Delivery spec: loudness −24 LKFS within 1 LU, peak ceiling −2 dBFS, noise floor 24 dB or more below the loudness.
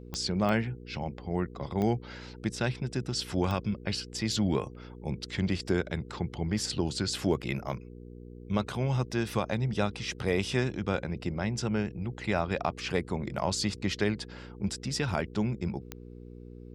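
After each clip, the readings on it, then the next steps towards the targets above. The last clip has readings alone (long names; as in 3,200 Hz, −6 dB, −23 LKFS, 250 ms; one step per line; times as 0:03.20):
number of clicks 5; mains hum 60 Hz; hum harmonics up to 480 Hz; level of the hum −46 dBFS; integrated loudness −31.5 LKFS; sample peak −14.0 dBFS; target loudness −24.0 LKFS
→ click removal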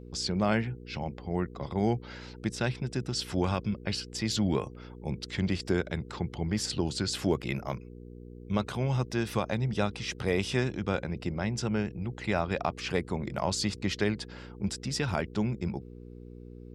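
number of clicks 0; mains hum 60 Hz; hum harmonics up to 480 Hz; level of the hum −46 dBFS
→ hum removal 60 Hz, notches 8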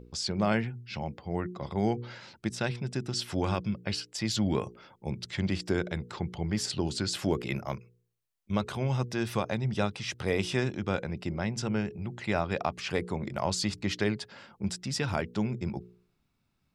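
mains hum none found; integrated loudness −32.0 LKFS; sample peak −13.5 dBFS; target loudness −24.0 LKFS
→ level +8 dB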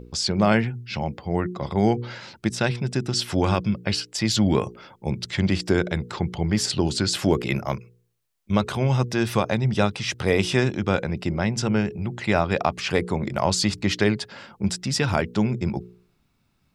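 integrated loudness −24.0 LKFS; sample peak −5.5 dBFS; background noise floor −67 dBFS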